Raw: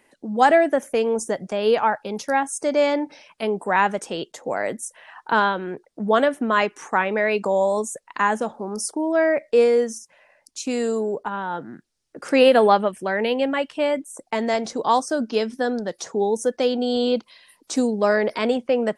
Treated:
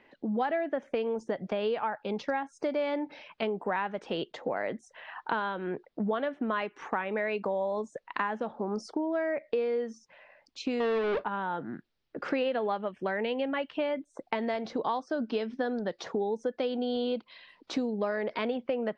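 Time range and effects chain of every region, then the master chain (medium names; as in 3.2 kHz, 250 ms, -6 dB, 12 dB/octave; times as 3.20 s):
10.80–11.24 s: resonant high shelf 1.6 kHz -13.5 dB, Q 3 + waveshaping leveller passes 5 + feedback comb 64 Hz, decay 0.19 s, harmonics odd, mix 40%
whole clip: low-pass 3.9 kHz 24 dB/octave; compression 6:1, threshold -28 dBFS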